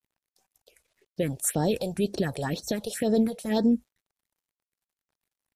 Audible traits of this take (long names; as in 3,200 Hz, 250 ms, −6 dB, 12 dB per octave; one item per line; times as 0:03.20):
phaser sweep stages 4, 2 Hz, lowest notch 260–2,500 Hz
a quantiser's noise floor 12 bits, dither none
MP3